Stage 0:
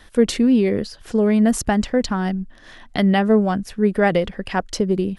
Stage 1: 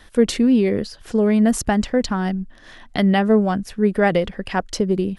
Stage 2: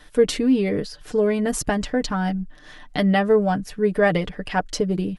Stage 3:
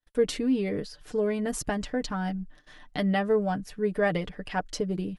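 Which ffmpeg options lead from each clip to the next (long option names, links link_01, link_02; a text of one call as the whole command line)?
ffmpeg -i in.wav -af anull out.wav
ffmpeg -i in.wav -af "aecho=1:1:6.7:0.65,volume=-2.5dB" out.wav
ffmpeg -i in.wav -af "agate=range=-37dB:threshold=-43dB:ratio=16:detection=peak,volume=-7dB" out.wav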